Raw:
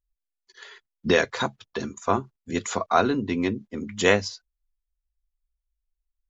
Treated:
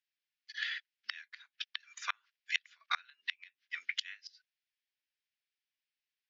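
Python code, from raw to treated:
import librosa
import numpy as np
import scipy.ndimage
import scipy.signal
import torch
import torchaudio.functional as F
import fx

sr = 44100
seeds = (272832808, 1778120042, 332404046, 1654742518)

y = scipy.signal.sosfilt(scipy.signal.cheby1(3, 1.0, [1600.0, 5400.0], 'bandpass', fs=sr, output='sos'), x)
y = fx.peak_eq(y, sr, hz=2400.0, db=7.5, octaves=1.4)
y = fx.gate_flip(y, sr, shuts_db=-21.0, range_db=-34)
y = F.gain(torch.from_numpy(y), 4.0).numpy()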